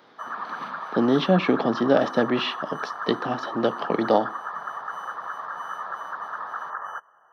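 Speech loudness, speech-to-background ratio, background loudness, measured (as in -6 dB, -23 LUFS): -24.0 LUFS, 9.0 dB, -33.0 LUFS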